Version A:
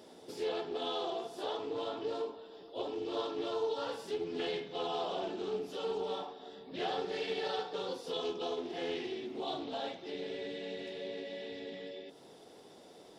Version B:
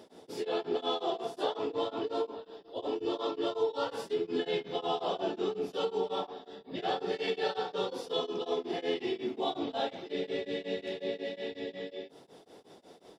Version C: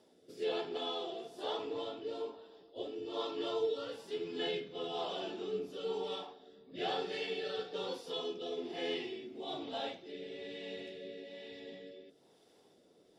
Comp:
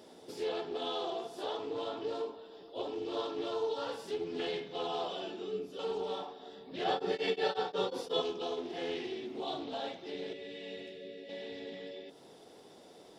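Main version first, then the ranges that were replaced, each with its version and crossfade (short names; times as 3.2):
A
5.08–5.79 from C
6.84–8.22 from B
10.33–11.29 from C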